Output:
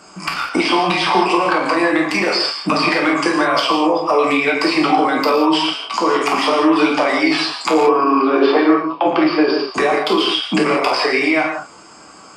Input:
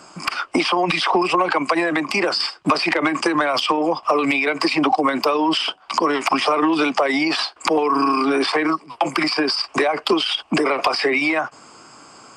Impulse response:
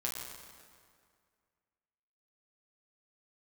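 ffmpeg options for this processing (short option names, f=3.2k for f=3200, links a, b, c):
-filter_complex "[0:a]asettb=1/sr,asplit=3[a][b][c];[a]atrim=end=7.874[d];[b]atrim=start=7.87:end=9.69,asetpts=PTS-STARTPTS,afade=t=in:d=0.004:c=qsin,afade=t=out:st=1.816:d=0.004:c=qsin,highpass=140,equalizer=f=380:t=q:w=4:g=8,equalizer=f=550:t=q:w=4:g=9,equalizer=f=2.1k:t=q:w=4:g=-6,lowpass=f=3.8k:w=0.5412,lowpass=f=3.8k:w=1.3066[e];[c]atrim=start=9.686[f];[d][e]acrossfade=d=0.004:c1=hsin:c2=qsin[g];[g][f]acrossfade=d=0.004:c1=qsin:c2=hsin[h];[1:a]atrim=start_sample=2205,afade=t=out:st=0.26:d=0.01,atrim=end_sample=11907[i];[h][i]afir=irnorm=-1:irlink=0,volume=1dB"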